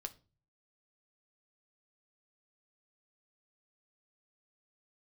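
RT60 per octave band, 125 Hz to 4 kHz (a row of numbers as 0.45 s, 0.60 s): 0.70 s, 0.50 s, 0.40 s, 0.30 s, 0.30 s, 0.30 s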